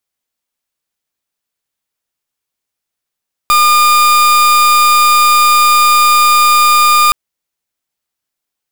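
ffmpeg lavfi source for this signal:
-f lavfi -i "aevalsrc='0.398*(2*lt(mod(1210*t,1),0.4)-1)':d=3.62:s=44100"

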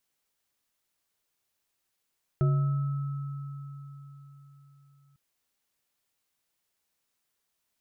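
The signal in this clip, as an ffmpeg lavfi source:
-f lavfi -i "aevalsrc='0.1*pow(10,-3*t/4.09)*sin(2*PI*140*t)+0.0316*pow(10,-3*t/0.64)*sin(2*PI*367*t)+0.0133*pow(10,-3*t/1.03)*sin(2*PI*630*t)+0.0126*pow(10,-3*t/4.47)*sin(2*PI*1300*t)':d=2.75:s=44100"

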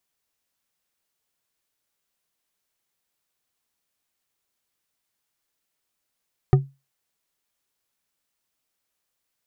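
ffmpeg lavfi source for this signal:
-f lavfi -i "aevalsrc='0.398*pow(10,-3*t/0.25)*sin(2*PI*137*t)+0.188*pow(10,-3*t/0.123)*sin(2*PI*377.7*t)+0.0891*pow(10,-3*t/0.077)*sin(2*PI*740.3*t)+0.0422*pow(10,-3*t/0.054)*sin(2*PI*1223.8*t)+0.02*pow(10,-3*t/0.041)*sin(2*PI*1827.6*t)':d=0.89:s=44100"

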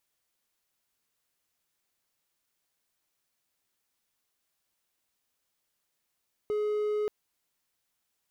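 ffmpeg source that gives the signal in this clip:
-f lavfi -i "aevalsrc='0.0596*(1-4*abs(mod(421*t+0.25,1)-0.5))':d=0.58:s=44100"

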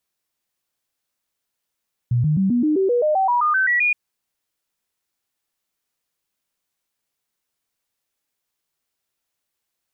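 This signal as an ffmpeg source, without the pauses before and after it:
-f lavfi -i "aevalsrc='0.178*clip(min(mod(t,0.13),0.13-mod(t,0.13))/0.005,0,1)*sin(2*PI*121*pow(2,floor(t/0.13)/3)*mod(t,0.13))':d=1.82:s=44100"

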